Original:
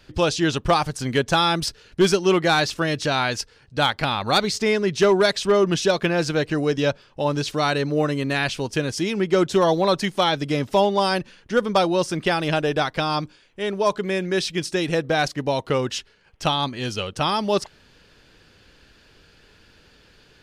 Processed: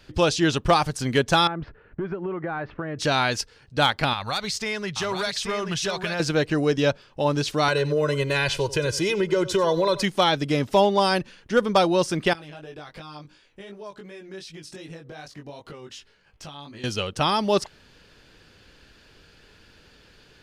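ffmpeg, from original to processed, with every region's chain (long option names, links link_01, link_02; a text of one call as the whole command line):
ffmpeg -i in.wav -filter_complex "[0:a]asettb=1/sr,asplit=3[link_01][link_02][link_03];[link_01]atrim=end=1.474[link_04];[link_02]atrim=start=1.47:end=2.99,asetpts=PTS-STARTPTS,afade=type=in:duration=0.004:curve=qsin,afade=type=out:start_time=1.516:duration=0.004:curve=qsin,lowpass=frequency=1800:width=0.5412,lowpass=frequency=1800:width=1.3066,acompressor=threshold=-25dB:ratio=16:attack=3.2:release=140:knee=1:detection=peak[link_05];[link_03]atrim=start=2.986[link_06];[link_04][link_05]acrossfade=duration=0.004:curve1=hsin:curve2=qsin[link_07];[link_07][link_06]acrossfade=duration=0.004:curve1=qsin:curve2=hsin,asettb=1/sr,asplit=3[link_08][link_09][link_10];[link_08]atrim=end=4.134[link_11];[link_09]atrim=start=4.13:end=6.2,asetpts=PTS-STARTPTS,afade=type=in:duration=0.004:curve=qsin,afade=type=out:start_time=2.066:duration=0.004:curve=qsin,equalizer=frequency=320:width=0.85:gain=-12.5,acompressor=threshold=-24dB:ratio=3:attack=3.2:release=140:knee=1:detection=peak,aecho=1:1:831:0.447,atrim=end_sample=91287[link_12];[link_10]atrim=start=6.196[link_13];[link_11][link_12]acrossfade=duration=0.004:curve1=hsin:curve2=qsin[link_14];[link_14][link_13]acrossfade=duration=0.004:curve1=qsin:curve2=hsin,asettb=1/sr,asplit=3[link_15][link_16][link_17];[link_15]atrim=end=7.684[link_18];[link_16]atrim=start=7.68:end=10.03,asetpts=PTS-STARTPTS,afade=type=in:duration=0.004:curve=qsin,afade=type=out:start_time=2.346:duration=0.004:curve=qsin,aecho=1:1:2:0.86,atrim=end_sample=103635,acompressor=threshold=-18dB:ratio=4:attack=3.2:release=140:knee=1:detection=peak,aecho=1:1:92:0.15,atrim=end_sample=103635[link_19];[link_17]atrim=start=10.026[link_20];[link_18][link_19]acrossfade=duration=0.004:curve1=hsin:curve2=qsin[link_21];[link_21][link_20]acrossfade=duration=0.004:curve1=qsin:curve2=hsin,asettb=1/sr,asplit=3[link_22][link_23][link_24];[link_22]atrim=end=12.334[link_25];[link_23]atrim=start=12.33:end=16.84,asetpts=PTS-STARTPTS,afade=type=in:duration=0.004:curve=qsin,afade=type=out:start_time=4.506:duration=0.004:curve=qsin,acompressor=threshold=-35dB:ratio=6:attack=3.2:release=140:knee=1:detection=peak,flanger=delay=18.5:depth=2.5:speed=2.7[link_26];[link_24]atrim=start=16.836[link_27];[link_25][link_26]acrossfade=duration=0.004:curve1=hsin:curve2=qsin[link_28];[link_28][link_27]acrossfade=duration=0.004:curve1=qsin:curve2=hsin" out.wav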